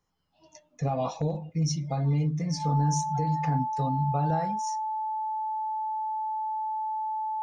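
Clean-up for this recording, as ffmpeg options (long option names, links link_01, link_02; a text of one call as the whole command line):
ffmpeg -i in.wav -af "bandreject=frequency=870:width=30" out.wav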